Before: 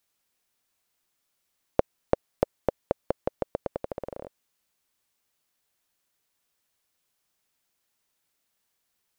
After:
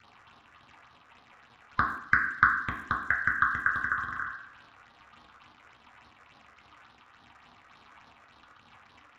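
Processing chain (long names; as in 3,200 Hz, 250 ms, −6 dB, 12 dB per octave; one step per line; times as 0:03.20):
neighbouring bands swapped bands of 1,000 Hz
surface crackle 230 per second −44 dBFS
low-pass that shuts in the quiet parts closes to 2,100 Hz, open at −29.5 dBFS
downward compressor, threshold −22 dBFS, peak gain reduction 7.5 dB
octave-band graphic EQ 500/1,000/4,000 Hz −5/+11/−3 dB
all-pass phaser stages 6, 3.5 Hz, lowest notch 220–2,300 Hz
parametric band 280 Hz +7.5 dB 0.48 octaves
convolution reverb RT60 0.65 s, pre-delay 3 ms, DRR −1 dB
one half of a high-frequency compander encoder only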